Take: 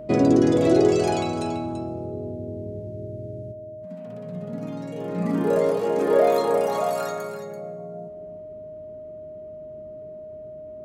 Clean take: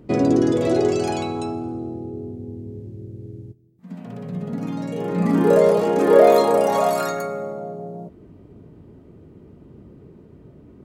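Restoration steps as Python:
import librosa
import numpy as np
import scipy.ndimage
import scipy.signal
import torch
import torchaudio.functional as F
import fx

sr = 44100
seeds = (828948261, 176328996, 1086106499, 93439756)

y = fx.notch(x, sr, hz=620.0, q=30.0)
y = fx.fix_echo_inverse(y, sr, delay_ms=335, level_db=-10.5)
y = fx.fix_level(y, sr, at_s=3.74, step_db=6.0)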